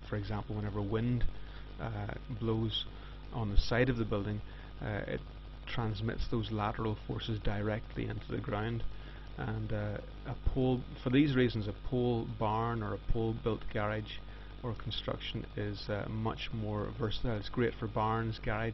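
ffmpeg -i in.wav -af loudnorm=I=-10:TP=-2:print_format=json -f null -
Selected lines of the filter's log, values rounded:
"input_i" : "-35.9",
"input_tp" : "-12.0",
"input_lra" : "4.7",
"input_thresh" : "-46.2",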